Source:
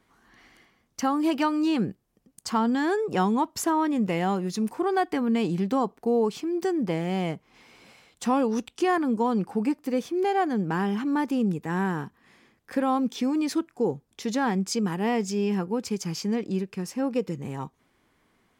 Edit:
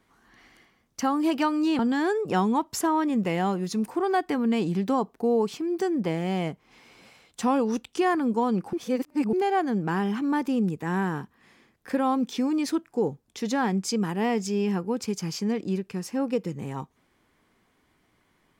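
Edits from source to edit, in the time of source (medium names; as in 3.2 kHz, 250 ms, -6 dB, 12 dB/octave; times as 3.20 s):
1.79–2.62 s: delete
9.56–10.16 s: reverse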